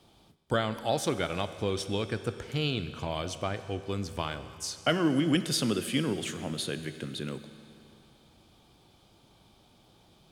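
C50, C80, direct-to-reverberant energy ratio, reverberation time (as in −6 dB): 12.0 dB, 12.5 dB, 11.0 dB, 2.8 s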